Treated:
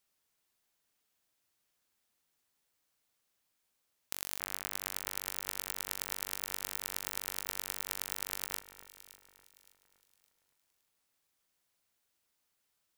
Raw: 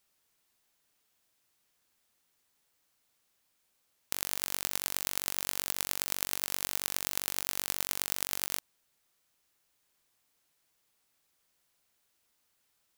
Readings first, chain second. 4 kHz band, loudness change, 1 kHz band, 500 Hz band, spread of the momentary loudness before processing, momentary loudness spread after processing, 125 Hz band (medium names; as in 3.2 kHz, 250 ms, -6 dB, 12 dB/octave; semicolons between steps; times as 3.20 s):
-5.0 dB, -5.0 dB, -4.5 dB, -4.5 dB, 1 LU, 6 LU, -4.5 dB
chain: echo whose repeats swap between lows and highs 283 ms, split 2.1 kHz, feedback 60%, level -12 dB; trim -5 dB